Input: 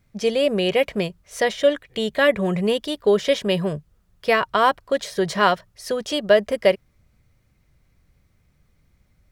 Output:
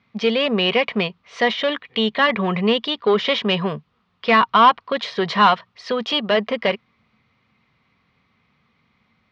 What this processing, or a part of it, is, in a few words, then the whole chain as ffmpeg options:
overdrive pedal into a guitar cabinet: -filter_complex "[0:a]asplit=2[a][b];[b]highpass=f=720:p=1,volume=15dB,asoftclip=type=tanh:threshold=-4.5dB[c];[a][c]amix=inputs=2:normalize=0,lowpass=f=7.6k:p=1,volume=-6dB,highpass=110,equalizer=f=230:t=q:w=4:g=8,equalizer=f=330:t=q:w=4:g=-7,equalizer=f=590:t=q:w=4:g=-9,equalizer=f=1.1k:t=q:w=4:g=5,equalizer=f=1.6k:t=q:w=4:g=-6,lowpass=f=3.9k:w=0.5412,lowpass=f=3.9k:w=1.3066"

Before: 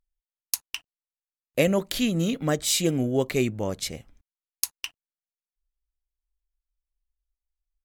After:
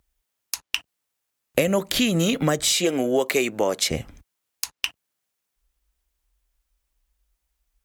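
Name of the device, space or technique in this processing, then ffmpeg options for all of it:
mastering chain: -filter_complex "[0:a]asettb=1/sr,asplit=3[a][b][c];[a]atrim=end=2.724[d];[b]atrim=start=2.72:end=3.91,asetpts=PTS-STARTPTS,afade=t=in:d=0.004:c=qsin,afade=t=out:st=1.186:d=0.004:c=qsin,highpass=390[e];[c]atrim=start=3.906[f];[d][e]acrossfade=d=0.004:c1=hsin:c2=qsin[g];[g][f]acrossfade=d=0.004:c1=qsin:c2=hsin,highpass=43,equalizer=f=4.4k:t=o:w=0.77:g=-2,acrossover=split=510|6300[h][i][j];[h]acompressor=threshold=-33dB:ratio=4[k];[i]acompressor=threshold=-31dB:ratio=4[l];[j]acompressor=threshold=-41dB:ratio=4[m];[k][l][m]amix=inputs=3:normalize=0,acompressor=threshold=-39dB:ratio=2,asoftclip=type=tanh:threshold=-15.5dB,alimiter=level_in=20.5dB:limit=-1dB:release=50:level=0:latency=1,volume=-4dB"

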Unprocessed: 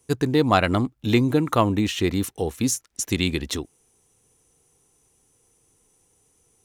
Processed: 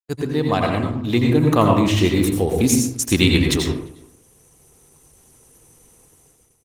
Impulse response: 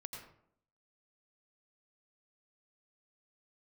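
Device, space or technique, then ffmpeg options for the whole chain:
speakerphone in a meeting room: -filter_complex "[0:a]asettb=1/sr,asplit=3[a][b][c];[a]atrim=end=0.464[d];[b]atrim=start=0.46:end=2.18,asetpts=PTS-STARTPTS,afade=t=in:d=0.004:c=qsin,afade=t=out:st=1.716:d=0.004:c=qsin,bandreject=f=1.4k:w=8.4[e];[c]atrim=start=2.176[f];[d][e]acrossfade=d=0.004:c1=hsin:c2=qsin[g];[g][f]acrossfade=d=0.004:c1=qsin:c2=hsin[h];[1:a]atrim=start_sample=2205[i];[h][i]afir=irnorm=-1:irlink=0,asplit=2[j][k];[k]adelay=350,highpass=300,lowpass=3.4k,asoftclip=type=hard:threshold=-17.5dB,volume=-27dB[l];[j][l]amix=inputs=2:normalize=0,dynaudnorm=f=560:g=5:m=15dB,agate=range=-56dB:threshold=-56dB:ratio=16:detection=peak,volume=2.5dB" -ar 48000 -c:a libopus -b:a 20k

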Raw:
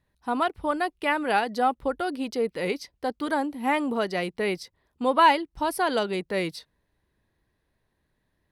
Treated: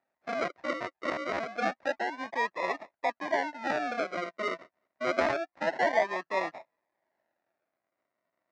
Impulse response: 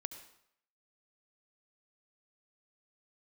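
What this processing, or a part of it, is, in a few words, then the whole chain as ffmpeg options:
circuit-bent sampling toy: -af "acrusher=samples=41:mix=1:aa=0.000001:lfo=1:lforange=24.6:lforate=0.27,highpass=450,equalizer=f=450:t=q:w=4:g=-7,equalizer=f=650:t=q:w=4:g=9,equalizer=f=930:t=q:w=4:g=4,equalizer=f=1.9k:t=q:w=4:g=8,equalizer=f=3.2k:t=q:w=4:g=-9,equalizer=f=4.5k:t=q:w=4:g=-4,lowpass=f=4.8k:w=0.5412,lowpass=f=4.8k:w=1.3066,volume=-3dB"

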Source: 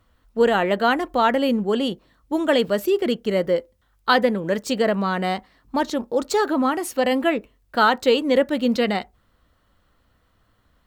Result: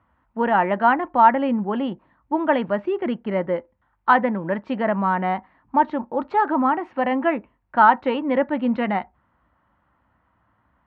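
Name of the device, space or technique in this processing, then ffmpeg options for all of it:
bass cabinet: -af "highpass=f=61:w=0.5412,highpass=f=61:w=1.3066,equalizer=f=89:t=q:w=4:g=-7,equalizer=f=450:t=q:w=4:g=-10,equalizer=f=910:t=q:w=4:g=9,lowpass=f=2.2k:w=0.5412,lowpass=f=2.2k:w=1.3066"

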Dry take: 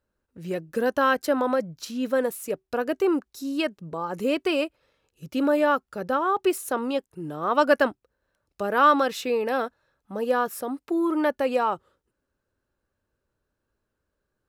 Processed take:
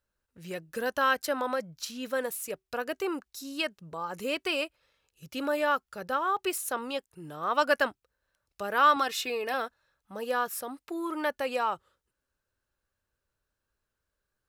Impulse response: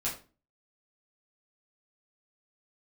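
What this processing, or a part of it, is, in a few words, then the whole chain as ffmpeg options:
low shelf boost with a cut just above: -filter_complex "[0:a]tiltshelf=f=1.1k:g=-4.5,asettb=1/sr,asplit=3[a][b][c];[a]atrim=end=8.964[d];[b]atrim=start=8.96:end=9.54,asetpts=PTS-STARTPTS,afade=t=in:d=0.004:c=qsin,afade=t=out:st=0.576:d=0.004:c=qsin,aecho=1:1:2.8:0.56,atrim=end_sample=25578[e];[c]atrim=start=9.536[f];[d][e]acrossfade=d=0.004:c1=hsin:c2=qsin[g];[g][f]acrossfade=d=0.004:c1=qsin:c2=hsin,lowshelf=f=70:g=6,equalizer=f=290:t=o:w=1.2:g=-4,volume=-3.5dB"

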